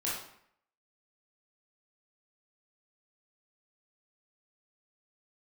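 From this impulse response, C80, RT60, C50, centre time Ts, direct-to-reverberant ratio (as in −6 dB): 5.5 dB, 0.65 s, 1.0 dB, 54 ms, −7.0 dB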